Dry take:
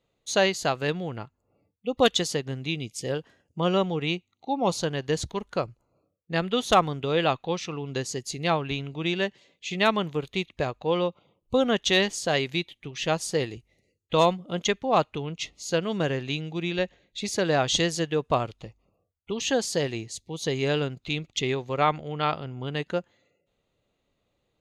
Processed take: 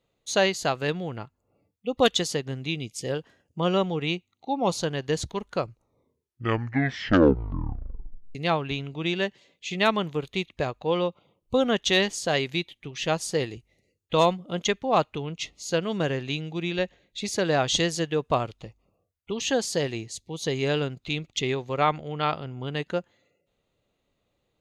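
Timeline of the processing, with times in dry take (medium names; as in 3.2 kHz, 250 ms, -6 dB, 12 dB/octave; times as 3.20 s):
5.65 s: tape stop 2.70 s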